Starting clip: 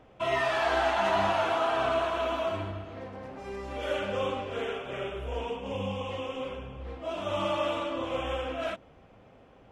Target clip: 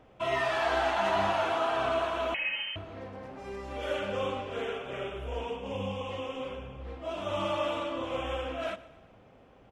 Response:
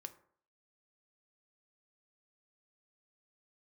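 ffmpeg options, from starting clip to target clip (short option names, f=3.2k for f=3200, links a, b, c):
-filter_complex "[0:a]asplit=2[a][b];[b]aecho=0:1:120|240|360|480:0.119|0.0606|0.0309|0.0158[c];[a][c]amix=inputs=2:normalize=0,asettb=1/sr,asplit=3[d][e][f];[d]atrim=end=2.344[g];[e]atrim=start=2.34:end=2.76,asetpts=PTS-STARTPTS,afade=t=in:d=0.004:c=qsin,afade=t=out:st=0.416:d=0.004:c=qsin,lowpass=f=2.7k:t=q:w=0.5098,lowpass=f=2.7k:t=q:w=0.6013,lowpass=f=2.7k:t=q:w=0.9,lowpass=f=2.7k:t=q:w=2.563,afreqshift=-3200[h];[f]atrim=start=2.756[i];[g][h]acrossfade=d=0.004:c1=hsin:c2=qsin[j];[j][i]acrossfade=d=0.004:c1=qsin:c2=hsin,volume=-1.5dB"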